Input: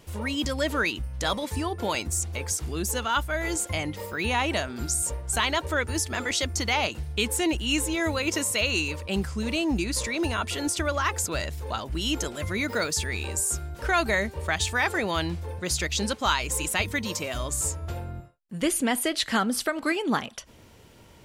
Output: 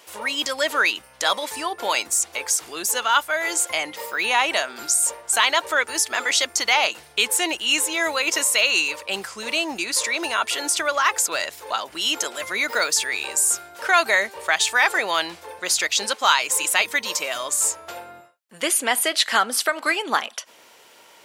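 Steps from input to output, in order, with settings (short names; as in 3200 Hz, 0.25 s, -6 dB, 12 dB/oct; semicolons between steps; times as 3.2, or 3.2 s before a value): HPF 660 Hz 12 dB/oct; gain +7.5 dB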